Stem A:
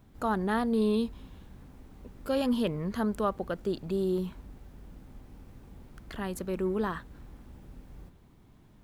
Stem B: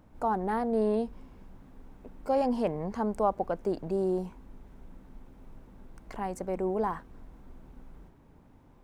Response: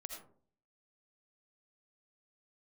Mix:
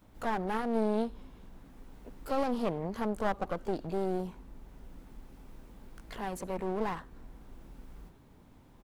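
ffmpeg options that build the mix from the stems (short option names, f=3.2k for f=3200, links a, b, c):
-filter_complex "[0:a]tiltshelf=f=970:g=-5.5,volume=-6dB,asplit=2[a][b];[b]volume=-14.5dB[c];[1:a]adelay=18,volume=-1dB,asplit=2[d][e];[e]apad=whole_len=389509[f];[a][f]sidechaincompress=threshold=-38dB:ratio=3:attack=16:release=876[g];[2:a]atrim=start_sample=2205[h];[c][h]afir=irnorm=-1:irlink=0[i];[g][d][i]amix=inputs=3:normalize=0,aeval=exprs='clip(val(0),-1,0.0112)':c=same"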